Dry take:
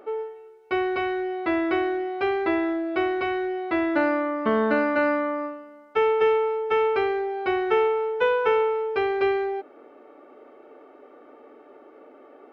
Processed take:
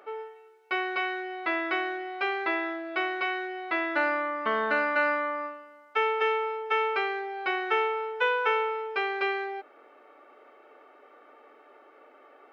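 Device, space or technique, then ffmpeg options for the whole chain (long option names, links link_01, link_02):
filter by subtraction: -filter_complex "[0:a]asplit=2[link_01][link_02];[link_02]lowpass=1700,volume=-1[link_03];[link_01][link_03]amix=inputs=2:normalize=0"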